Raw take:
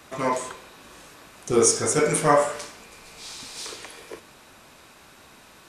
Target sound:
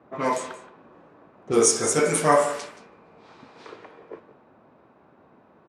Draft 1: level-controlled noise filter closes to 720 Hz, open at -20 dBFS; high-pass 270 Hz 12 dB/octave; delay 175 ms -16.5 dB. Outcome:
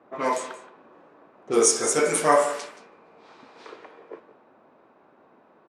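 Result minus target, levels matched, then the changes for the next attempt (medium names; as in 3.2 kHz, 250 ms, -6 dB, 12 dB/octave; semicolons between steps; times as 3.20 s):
125 Hz band -8.0 dB
change: high-pass 130 Hz 12 dB/octave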